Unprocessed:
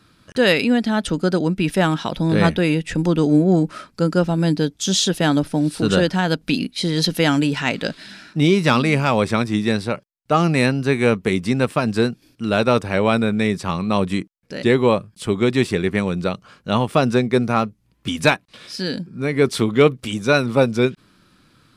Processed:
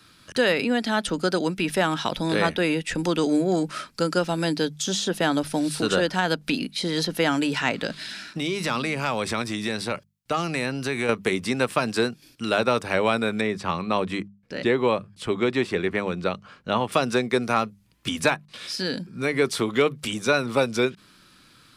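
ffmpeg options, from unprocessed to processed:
-filter_complex "[0:a]asettb=1/sr,asplit=3[s0][s1][s2];[s0]atrim=end=7.834[s3];[s1]atrim=start=7.83:end=11.09,asetpts=PTS-STARTPTS,afade=t=in:d=0.004:c=qsin,afade=t=out:st=3.256:d=0.004:c=qsin,acompressor=threshold=0.112:ratio=6:attack=3.2:release=140:knee=1:detection=peak[s4];[s2]atrim=start=11.086[s5];[s3][s4]acrossfade=d=0.004:c1=hsin:c2=qsin[s6];[s6][s5]acrossfade=d=0.004:c1=qsin:c2=hsin,asettb=1/sr,asplit=3[s7][s8][s9];[s7]atrim=end=13.414[s10];[s8]atrim=start=13.41:end=16.92,asetpts=PTS-STARTPTS,afade=t=in:d=0.004:c=qsin,afade=t=out:st=3.506:d=0.004:c=qsin,lowpass=f=1700:p=1[s11];[s9]atrim=start=16.916[s12];[s10][s11]acrossfade=d=0.004:c1=hsin:c2=qsin[s13];[s13][s12]acrossfade=d=0.004:c1=qsin:c2=hsin,tiltshelf=f=1300:g=-4.5,bandreject=f=50:t=h:w=6,bandreject=f=100:t=h:w=6,bandreject=f=150:t=h:w=6,bandreject=f=200:t=h:w=6,acrossover=split=280|1600[s14][s15][s16];[s14]acompressor=threshold=0.02:ratio=4[s17];[s15]acompressor=threshold=0.1:ratio=4[s18];[s16]acompressor=threshold=0.0282:ratio=4[s19];[s17][s18][s19]amix=inputs=3:normalize=0,volume=1.19"

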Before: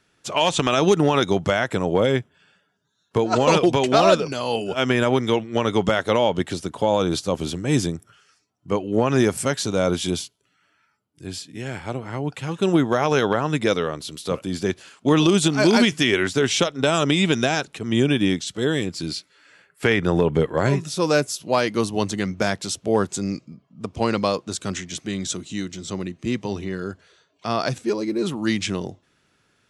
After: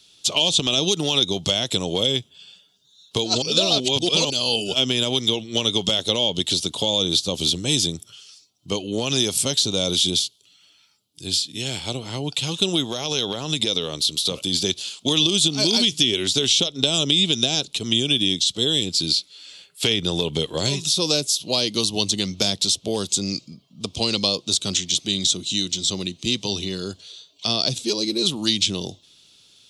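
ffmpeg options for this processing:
-filter_complex "[0:a]asettb=1/sr,asplit=3[s0][s1][s2];[s0]atrim=end=12.874[s3];[s1]atrim=start=12.87:end=14.54,asetpts=PTS-STARTPTS,afade=t=in:d=0.004:c=qsin,afade=t=out:st=1.666:d=0.004:c=qsin,acompressor=threshold=0.0891:ratio=6:attack=3.2:release=140:knee=1:detection=peak[s4];[s2]atrim=start=14.536[s5];[s3][s4]acrossfade=d=0.004:c1=hsin:c2=qsin[s6];[s6][s5]acrossfade=d=0.004:c1=qsin:c2=hsin,asplit=3[s7][s8][s9];[s7]atrim=end=3.422[s10];[s8]atrim=start=3.418:end=4.302,asetpts=PTS-STARTPTS,areverse[s11];[s9]atrim=start=4.298[s12];[s10][s11]acrossfade=d=0.004:c1=hsin:c2=hsin[s13];[s13][s12]acrossfade=d=0.004:c1=hsin:c2=hsin,highshelf=f=2500:t=q:w=3:g=13,acrossover=split=560|2300[s14][s15][s16];[s14]acompressor=threshold=0.0708:ratio=4[s17];[s15]acompressor=threshold=0.0224:ratio=4[s18];[s16]acompressor=threshold=0.1:ratio=4[s19];[s17][s18][s19]amix=inputs=3:normalize=0"

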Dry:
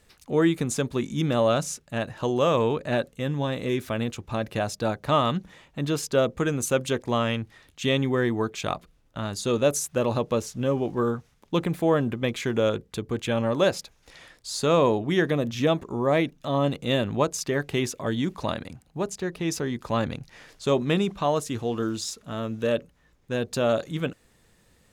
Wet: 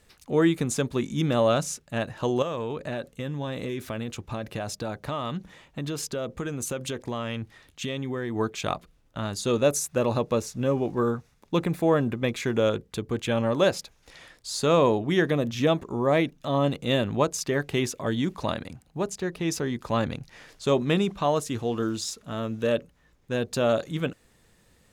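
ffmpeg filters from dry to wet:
-filter_complex "[0:a]asettb=1/sr,asplit=3[s0][s1][s2];[s0]atrim=end=2.424[s3];[s1]atrim=start=2.42:end=8.36,asetpts=PTS-STARTPTS,afade=t=in:d=0.004:c=qsin,afade=t=out:st=5.936:d=0.004:c=qsin,acompressor=threshold=0.0447:ratio=6:attack=3.2:release=140:knee=1:detection=peak[s4];[s2]atrim=start=8.356[s5];[s3][s4]acrossfade=d=0.004:c1=hsin:c2=qsin[s6];[s6][s5]acrossfade=d=0.004:c1=qsin:c2=hsin,asettb=1/sr,asplit=3[s7][s8][s9];[s7]atrim=end=9.584[s10];[s8]atrim=start=9.58:end=12.57,asetpts=PTS-STARTPTS,afade=t=in:d=0.004:c=qsin,afade=t=out:st=2.986:d=0.004:c=qsin,bandreject=f=3100:w=12[s11];[s9]atrim=start=12.566[s12];[s10][s11]acrossfade=d=0.004:c1=hsin:c2=qsin[s13];[s13][s12]acrossfade=d=0.004:c1=qsin:c2=hsin"

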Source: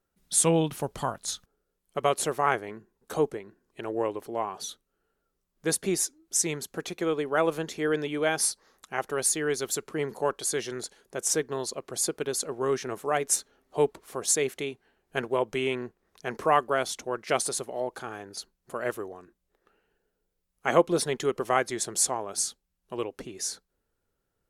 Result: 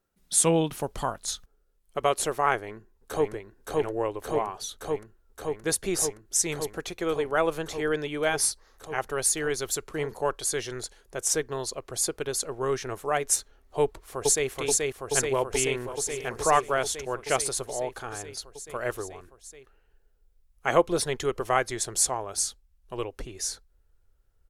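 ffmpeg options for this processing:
-filter_complex "[0:a]asplit=2[s0][s1];[s1]afade=t=in:st=2.56:d=0.01,afade=t=out:st=3.32:d=0.01,aecho=0:1:570|1140|1710|2280|2850|3420|3990|4560|5130|5700|6270|6840:0.891251|0.757563|0.643929|0.547339|0.465239|0.395453|0.336135|0.285715|0.242857|0.206429|0.175464|0.149145[s2];[s0][s2]amix=inputs=2:normalize=0,asplit=2[s3][s4];[s4]afade=t=in:st=13.82:d=0.01,afade=t=out:st=14.49:d=0.01,aecho=0:1:430|860|1290|1720|2150|2580|3010|3440|3870|4300|4730|5160:0.841395|0.673116|0.538493|0.430794|0.344635|0.275708|0.220567|0.176453|0.141163|0.11293|0.0903441|0.0722753[s5];[s3][s5]amix=inputs=2:normalize=0,asplit=2[s6][s7];[s7]afade=t=in:st=15.32:d=0.01,afade=t=out:st=16.3:d=0.01,aecho=0:1:530|1060:0.211349|0.0422698[s8];[s6][s8]amix=inputs=2:normalize=0,asubboost=boost=11.5:cutoff=58,volume=1.12"

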